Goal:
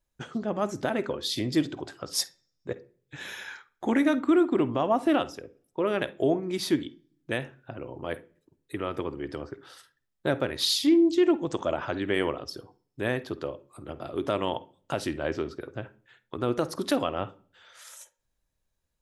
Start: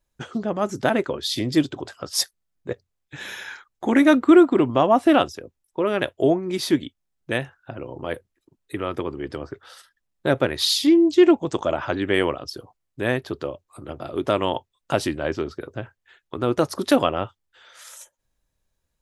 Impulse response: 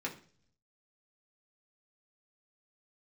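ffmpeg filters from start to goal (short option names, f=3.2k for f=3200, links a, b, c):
-filter_complex "[0:a]alimiter=limit=-9.5dB:level=0:latency=1:release=195,asplit=2[a][b];[1:a]atrim=start_sample=2205,adelay=50[c];[b][c]afir=irnorm=-1:irlink=0,volume=-18dB[d];[a][d]amix=inputs=2:normalize=0,volume=-4.5dB"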